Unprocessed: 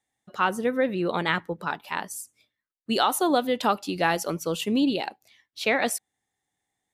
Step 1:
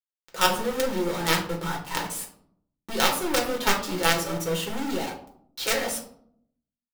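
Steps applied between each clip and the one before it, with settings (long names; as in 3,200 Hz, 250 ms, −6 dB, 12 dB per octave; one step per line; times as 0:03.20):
log-companded quantiser 2 bits
convolution reverb RT60 0.65 s, pre-delay 5 ms, DRR −1.5 dB
level −8 dB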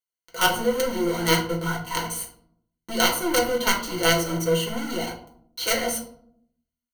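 EQ curve with evenly spaced ripples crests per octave 1.9, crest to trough 16 dB
level −1 dB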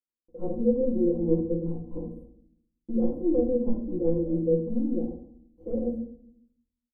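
inverse Chebyshev low-pass filter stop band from 1,500 Hz, stop band 60 dB
comb filter 3.7 ms, depth 91%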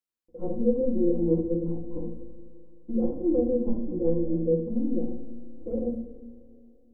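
four-comb reverb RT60 3.2 s, combs from 26 ms, DRR 12 dB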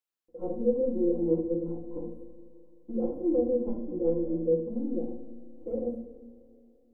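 bass and treble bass −9 dB, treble −2 dB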